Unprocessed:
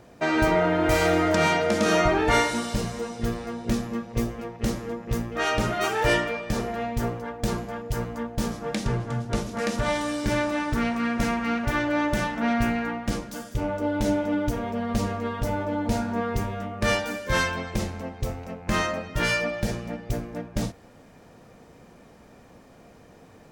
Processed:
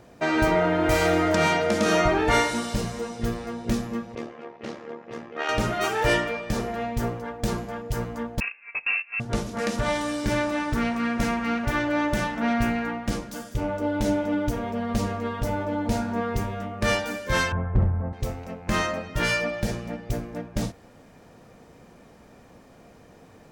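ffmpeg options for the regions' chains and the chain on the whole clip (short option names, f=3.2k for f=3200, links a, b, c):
-filter_complex "[0:a]asettb=1/sr,asplit=3[a][b][c];[a]atrim=end=4.154[d];[b]atrim=start=4.15:end=5.49,asetpts=PTS-STARTPTS,afade=t=in:d=0.004:c=qsin,afade=t=out:st=1.336:d=0.004:c=qsin,highpass=330,lowpass=3.7k,tremolo=f=74:d=0.667[e];[c]atrim=start=5.486[f];[d][e]acrossfade=d=0.004:c1=hsin:c2=qsin[g];[g][f]acrossfade=d=0.004:c1=qsin:c2=hsin,asettb=1/sr,asplit=3[h][i][j];[h]atrim=end=8.404[k];[i]atrim=start=8.4:end=9.2,asetpts=PTS-STARTPTS,afade=t=in:d=0.004:c=qsin,afade=t=out:st=0.796:d=0.004:c=qsin,agate=range=-16dB:threshold=-28dB:ratio=16:release=100:detection=peak,lowpass=f=2.4k:t=q:w=0.5098,lowpass=f=2.4k:t=q:w=0.6013,lowpass=f=2.4k:t=q:w=0.9,lowpass=f=2.4k:t=q:w=2.563,afreqshift=-2800[l];[j]atrim=start=9.196[m];[k][l]acrossfade=d=0.004:c1=hsin:c2=qsin[n];[n][m]acrossfade=d=0.004:c1=qsin:c2=hsin,asettb=1/sr,asplit=3[o][p][q];[o]atrim=end=17.524[r];[p]atrim=start=17.52:end=18.13,asetpts=PTS-STARTPTS,afade=t=in:d=0.004:c=qsin,afade=t=out:st=0.606:d=0.004:c=qsin,lowpass=f=1.5k:w=0.5412,lowpass=f=1.5k:w=1.3066,lowshelf=f=180:t=q:w=1.5:g=10.5,volume=14dB,asoftclip=hard,volume=-14dB[s];[q]atrim=start=18.126[t];[r][s]acrossfade=d=0.004:c1=hsin:c2=qsin[u];[u][t]acrossfade=d=0.004:c1=qsin:c2=hsin"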